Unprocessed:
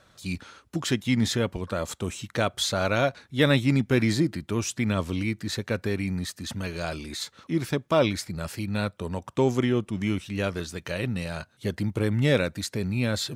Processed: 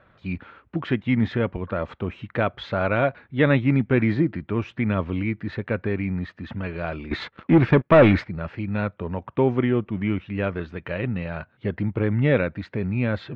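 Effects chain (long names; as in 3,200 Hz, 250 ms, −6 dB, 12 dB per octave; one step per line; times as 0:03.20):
0:07.11–0:08.24: leveller curve on the samples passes 3
low-pass filter 2,500 Hz 24 dB per octave
level +2.5 dB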